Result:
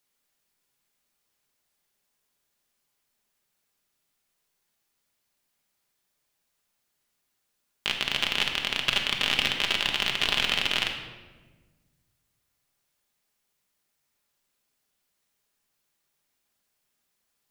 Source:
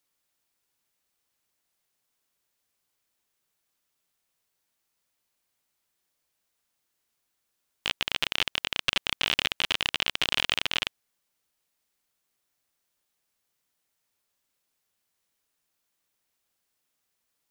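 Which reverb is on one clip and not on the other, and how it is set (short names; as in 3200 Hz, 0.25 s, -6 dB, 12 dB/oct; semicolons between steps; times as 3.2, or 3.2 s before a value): shoebox room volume 1000 m³, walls mixed, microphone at 1.3 m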